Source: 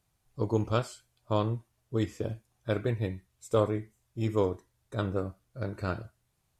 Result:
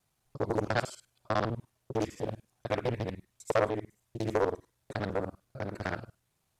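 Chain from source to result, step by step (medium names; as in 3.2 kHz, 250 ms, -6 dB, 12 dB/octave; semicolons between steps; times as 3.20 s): time reversed locally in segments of 50 ms; bass shelf 110 Hz -9 dB; loudspeaker Doppler distortion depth 0.76 ms; trim +1 dB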